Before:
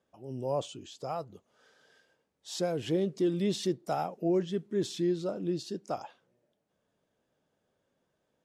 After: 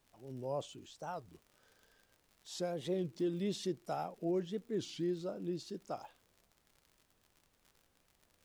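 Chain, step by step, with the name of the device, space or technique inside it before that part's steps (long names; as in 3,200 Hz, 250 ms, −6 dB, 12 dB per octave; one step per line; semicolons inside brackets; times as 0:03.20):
warped LP (wow of a warped record 33 1/3 rpm, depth 250 cents; surface crackle 77 per second −44 dBFS; pink noise bed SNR 34 dB)
level −7 dB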